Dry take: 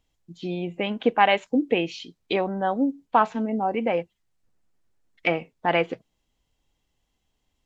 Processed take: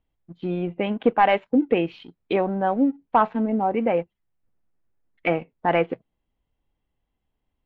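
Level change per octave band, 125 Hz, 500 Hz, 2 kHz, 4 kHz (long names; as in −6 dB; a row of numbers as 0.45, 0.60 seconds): +3.0, +2.0, −2.0, −6.0 decibels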